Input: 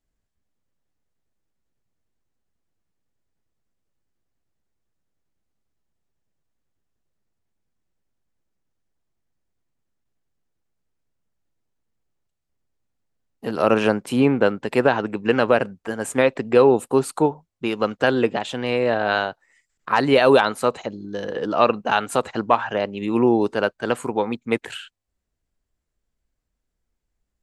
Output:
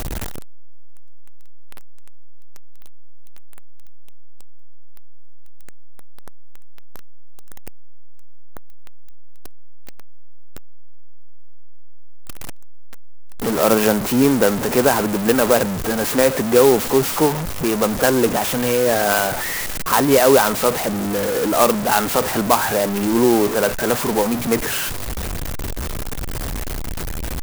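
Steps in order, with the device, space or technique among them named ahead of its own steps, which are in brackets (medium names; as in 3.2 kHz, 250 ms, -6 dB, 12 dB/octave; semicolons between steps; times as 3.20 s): early CD player with a faulty converter (jump at every zero crossing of -18 dBFS; sampling jitter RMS 0.071 ms)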